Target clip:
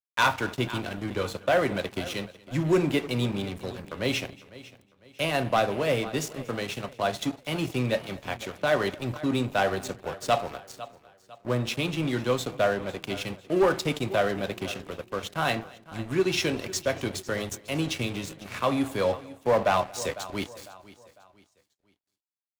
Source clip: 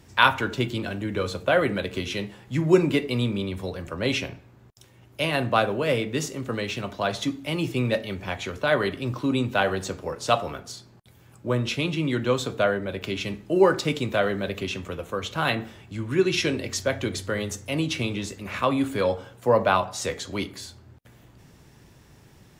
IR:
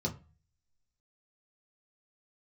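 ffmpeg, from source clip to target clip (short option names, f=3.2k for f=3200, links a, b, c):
-filter_complex "[0:a]highshelf=f=8.3k:g=4.5,aeval=exprs='sgn(val(0))*max(abs(val(0))-0.0158,0)':c=same,adynamicequalizer=threshold=0.0112:dfrequency=710:dqfactor=3.5:tfrequency=710:tqfactor=3.5:attack=5:release=100:ratio=0.375:range=2.5:mode=boostabove:tftype=bell,asplit=2[a][b];[b]aecho=0:1:501|1002|1503:0.106|0.0392|0.0145[c];[a][c]amix=inputs=2:normalize=0,asoftclip=type=tanh:threshold=-15dB,asplit=2[d][e];[e]aecho=0:1:234:0.0668[f];[d][f]amix=inputs=2:normalize=0"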